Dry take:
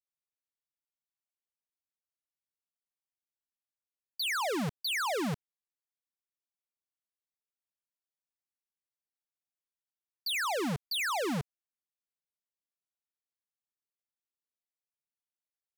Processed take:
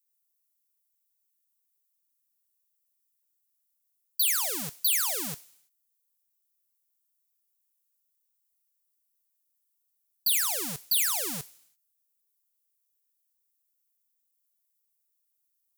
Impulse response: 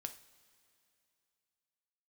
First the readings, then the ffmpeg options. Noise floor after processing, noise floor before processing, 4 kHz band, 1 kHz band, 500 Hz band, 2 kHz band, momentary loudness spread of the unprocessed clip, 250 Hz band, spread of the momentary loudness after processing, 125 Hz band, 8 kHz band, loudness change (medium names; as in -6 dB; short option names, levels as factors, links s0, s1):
-77 dBFS, under -85 dBFS, +3.0 dB, -6.5 dB, -8.0 dB, -3.0 dB, 9 LU, -8.5 dB, 12 LU, -8.5 dB, +13.5 dB, +6.5 dB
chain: -filter_complex "[0:a]crystalizer=i=3.5:c=0,asplit=2[s0][s1];[s1]aderivative[s2];[1:a]atrim=start_sample=2205,afade=t=out:st=0.4:d=0.01,atrim=end_sample=18081[s3];[s2][s3]afir=irnorm=-1:irlink=0,volume=2.82[s4];[s0][s4]amix=inputs=2:normalize=0,volume=0.376"